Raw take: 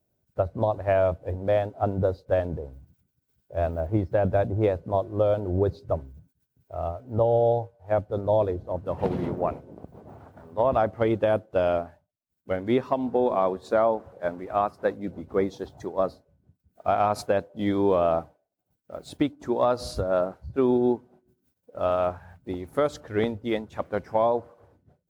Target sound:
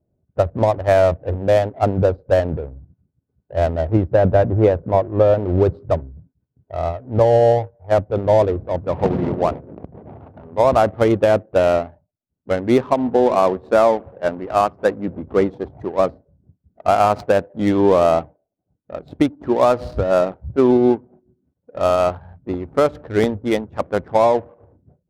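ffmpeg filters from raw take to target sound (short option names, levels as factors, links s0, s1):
-filter_complex "[0:a]adynamicsmooth=sensitivity=6:basefreq=680,asettb=1/sr,asplit=3[s0][s1][s2];[s0]atrim=end=4.124[s3];[s1]atrim=start=4.12:end=5.39,asetpts=PTS-STARTPTS,afade=t=in:d=0.004:c=qsin,afade=t=out:st=1.266:d=0.004:c=qsin,aemphasis=mode=reproduction:type=75fm[s4];[s2]atrim=start=5.386[s5];[s3][s4]acrossfade=d=0.004:c1=hsin:c2=qsin[s6];[s6][s5]acrossfade=d=0.004:c1=qsin:c2=hsin,volume=2.51"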